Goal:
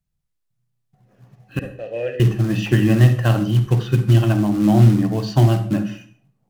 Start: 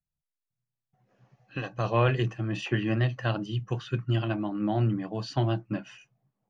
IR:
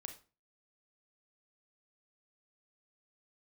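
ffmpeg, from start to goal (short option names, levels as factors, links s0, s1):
-filter_complex "[0:a]acrusher=bits=4:mode=log:mix=0:aa=0.000001,asettb=1/sr,asplit=3[s0][s1][s2];[s0]atrim=end=1.594[s3];[s1]atrim=start=1.59:end=2.2,asetpts=PTS-STARTPTS,afade=t=in:d=0.004:c=qsin,afade=t=out:st=0.606:d=0.004:c=qsin,asplit=3[s4][s5][s6];[s4]bandpass=f=530:t=q:w=8,volume=1[s7];[s5]bandpass=f=1840:t=q:w=8,volume=0.501[s8];[s6]bandpass=f=2480:t=q:w=8,volume=0.355[s9];[s7][s8][s9]amix=inputs=3:normalize=0[s10];[s2]atrim=start=2.196[s11];[s3][s10]acrossfade=d=0.004:c1=hsin:c2=qsin[s12];[s12][s11]acrossfade=d=0.004:c1=qsin:c2=hsin,asplit=2[s13][s14];[1:a]atrim=start_sample=2205,asetrate=29106,aresample=44100,lowshelf=f=390:g=11.5[s15];[s14][s15]afir=irnorm=-1:irlink=0,volume=1.78[s16];[s13][s16]amix=inputs=2:normalize=0,volume=0.891"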